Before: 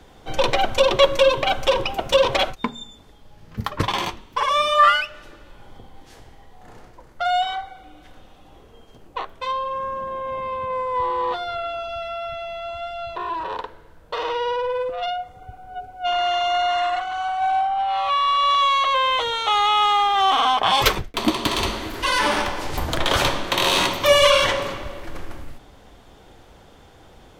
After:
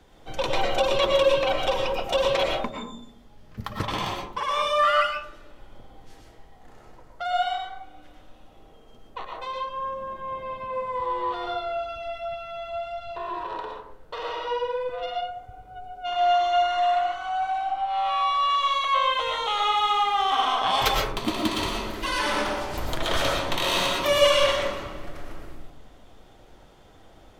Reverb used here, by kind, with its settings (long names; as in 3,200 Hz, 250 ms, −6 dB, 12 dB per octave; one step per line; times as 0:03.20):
comb and all-pass reverb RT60 0.68 s, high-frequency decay 0.3×, pre-delay 75 ms, DRR 0 dB
level −7.5 dB